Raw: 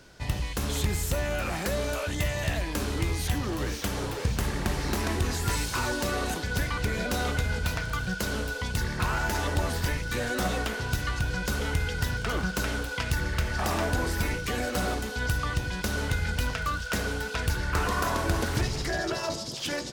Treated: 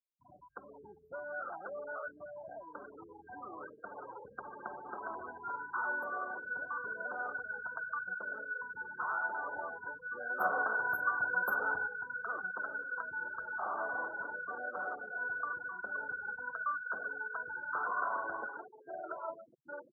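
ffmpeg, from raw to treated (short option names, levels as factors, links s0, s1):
-filter_complex "[0:a]asettb=1/sr,asplit=3[s0][s1][s2];[s0]atrim=end=3.084[s3];[s1]atrim=start=3.08:end=6.93,asetpts=PTS-STARTPTS,afade=t=in:d=0.004:c=qsin,afade=t=out:st=3.846:d=0.004:c=qsin,asplit=2[s4][s5];[s5]adelay=73,lowpass=f=3700:p=1,volume=0.376,asplit=2[s6][s7];[s7]adelay=73,lowpass=f=3700:p=1,volume=0.54,asplit=2[s8][s9];[s9]adelay=73,lowpass=f=3700:p=1,volume=0.54,asplit=2[s10][s11];[s11]adelay=73,lowpass=f=3700:p=1,volume=0.54,asplit=2[s12][s13];[s13]adelay=73,lowpass=f=3700:p=1,volume=0.54,asplit=2[s14][s15];[s15]adelay=73,lowpass=f=3700:p=1,volume=0.54[s16];[s4][s6][s8][s10][s12][s14][s16]amix=inputs=7:normalize=0,atrim=end_sample=169785[s17];[s2]atrim=start=6.926[s18];[s3][s17]acrossfade=d=0.004:c1=hsin:c2=qsin[s19];[s19][s18]acrossfade=d=0.004:c1=qsin:c2=hsin,asettb=1/sr,asplit=3[s20][s21][s22];[s20]atrim=end=10.404[s23];[s21]atrim=start=10.4:end=11.87,asetpts=PTS-STARTPTS,afade=t=in:d=0.004:c=qsin,afade=t=out:st=1.466:d=0.004:c=qsin,acontrast=88[s24];[s22]atrim=start=11.866[s25];[s23][s24]acrossfade=d=0.004:c1=hsin:c2=qsin[s26];[s26][s25]acrossfade=d=0.004:c1=qsin:c2=hsin,asettb=1/sr,asplit=3[s27][s28][s29];[s27]atrim=end=12.374[s30];[s28]atrim=start=12.37:end=16.33,asetpts=PTS-STARTPTS,afade=t=in:d=0.004:c=qsin,afade=t=out:st=3.956:d=0.004:c=qsin,asplit=7[s31][s32][s33][s34][s35][s36][s37];[s32]adelay=258,afreqshift=-31,volume=0.316[s38];[s33]adelay=516,afreqshift=-62,volume=0.174[s39];[s34]adelay=774,afreqshift=-93,volume=0.0955[s40];[s35]adelay=1032,afreqshift=-124,volume=0.0525[s41];[s36]adelay=1290,afreqshift=-155,volume=0.0288[s42];[s37]adelay=1548,afreqshift=-186,volume=0.0158[s43];[s31][s38][s39][s40][s41][s42][s43]amix=inputs=7:normalize=0,atrim=end_sample=174636[s44];[s29]atrim=start=16.326[s45];[s30][s44]acrossfade=d=0.004:c1=hsin:c2=qsin[s46];[s46][s45]acrossfade=d=0.004:c1=qsin:c2=hsin,asettb=1/sr,asplit=3[s47][s48][s49];[s47]atrim=end=18.474[s50];[s48]atrim=start=18.47:end=18.87,asetpts=PTS-STARTPTS,afade=t=in:d=0.004:c=qsin,afade=t=out:st=0.396:d=0.004:c=qsin,highpass=290,lowpass=2000[s51];[s49]atrim=start=18.866[s52];[s50][s51]acrossfade=d=0.004:c1=hsin:c2=qsin[s53];[s53][s52]acrossfade=d=0.004:c1=qsin:c2=hsin,afftfilt=real='re*gte(hypot(re,im),0.0447)':imag='im*gte(hypot(re,im),0.0447)':win_size=1024:overlap=0.75,highpass=900,afftfilt=real='re*(1-between(b*sr/4096,1600,12000))':imag='im*(1-between(b*sr/4096,1600,12000))':win_size=4096:overlap=0.75,volume=0.75"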